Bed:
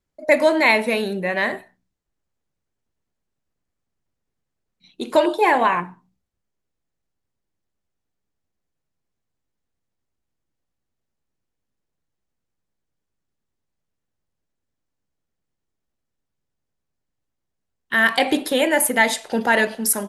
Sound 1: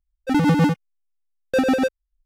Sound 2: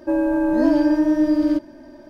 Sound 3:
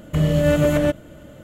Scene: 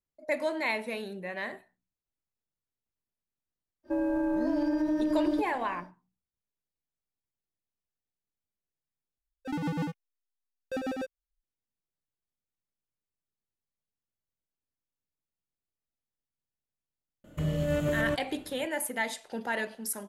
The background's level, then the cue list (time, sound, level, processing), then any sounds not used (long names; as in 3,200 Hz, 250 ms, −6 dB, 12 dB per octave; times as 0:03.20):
bed −14.5 dB
0:03.83: mix in 2 −5.5 dB, fades 0.10 s + downward compressor, threshold −19 dBFS
0:09.18: overwrite with 1 −15 dB
0:17.24: mix in 3 −11.5 dB